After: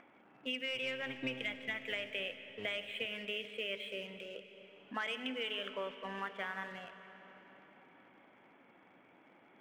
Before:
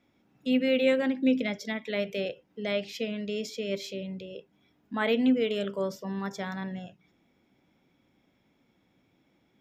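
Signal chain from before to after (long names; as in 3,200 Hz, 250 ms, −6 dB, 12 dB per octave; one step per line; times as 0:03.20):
0:00.74–0:03.06: sub-octave generator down 1 octave, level 0 dB
elliptic low-pass filter 3,100 Hz, stop band 40 dB
low-pass that shuts in the quiet parts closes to 1,100 Hz, open at −21 dBFS
high-pass filter 75 Hz 6 dB per octave
first difference
upward compression, threshold −60 dBFS
leveller curve on the samples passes 1
downward compressor 10 to 1, threshold −50 dBFS, peak gain reduction 14.5 dB
convolution reverb RT60 4.7 s, pre-delay 60 ms, DRR 10 dB
level +14.5 dB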